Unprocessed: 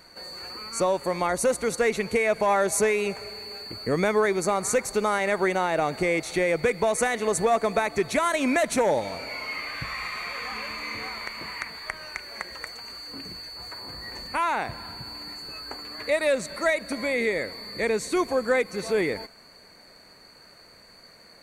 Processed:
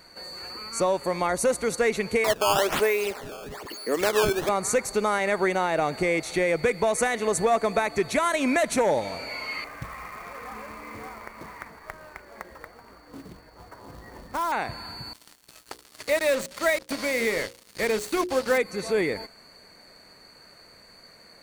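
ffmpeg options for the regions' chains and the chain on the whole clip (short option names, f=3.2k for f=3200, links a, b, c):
-filter_complex "[0:a]asettb=1/sr,asplit=3[a][b][c];[a]atrim=end=2.244[d];[b]atrim=start=2.24:end=4.49,asetpts=PTS-STARTPTS,afade=t=in:d=0.004:c=qsin,afade=t=out:st=2.246:d=0.004:c=qsin,highpass=f=270:w=0.5412,highpass=f=270:w=1.3066,acrusher=samples=13:mix=1:aa=0.000001:lfo=1:lforange=20.8:lforate=1.1[e];[c]atrim=start=4.486[f];[d][e]acrossfade=d=0.004:c1=hsin:c2=qsin[g];[g][f]acrossfade=d=0.004:c1=qsin:c2=hsin,asettb=1/sr,asplit=3[h][i][j];[h]atrim=end=9.644[k];[i]atrim=start=9.64:end=14.52,asetpts=PTS-STARTPTS,afade=t=in:d=0.004:c=qsin,afade=t=out:st=4.876:d=0.004:c=qsin,lowpass=1.2k,acrusher=bits=3:mode=log:mix=0:aa=0.000001[l];[j]atrim=start=14.516[m];[k][l]acrossfade=d=0.004:c1=hsin:c2=qsin[n];[n][m]acrossfade=d=0.004:c1=qsin:c2=hsin,asettb=1/sr,asplit=3[o][p][q];[o]atrim=end=15.134[r];[p]atrim=start=15.13:end=18.58,asetpts=PTS-STARTPTS,afade=t=in:d=0.004:c=qsin,afade=t=out:st=3.446:d=0.004:c=qsin,acrusher=bits=4:mix=0:aa=0.5,bandreject=f=60:t=h:w=6,bandreject=f=120:t=h:w=6,bandreject=f=180:t=h:w=6,bandreject=f=240:t=h:w=6,bandreject=f=300:t=h:w=6,bandreject=f=360:t=h:w=6,bandreject=f=420:t=h:w=6,bandreject=f=480:t=h:w=6,bandreject=f=540:t=h:w=6[s];[q]atrim=start=18.576[t];[r][s]acrossfade=d=0.004:c1=hsin:c2=qsin[u];[u][t]acrossfade=d=0.004:c1=qsin:c2=hsin"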